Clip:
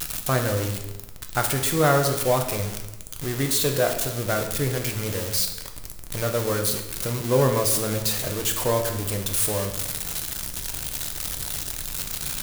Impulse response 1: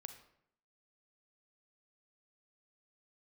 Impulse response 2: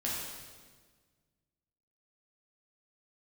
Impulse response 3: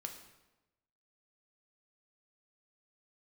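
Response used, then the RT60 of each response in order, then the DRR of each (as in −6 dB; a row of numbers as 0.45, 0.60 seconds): 3; 0.70, 1.5, 1.0 seconds; 7.5, −6.0, 3.5 decibels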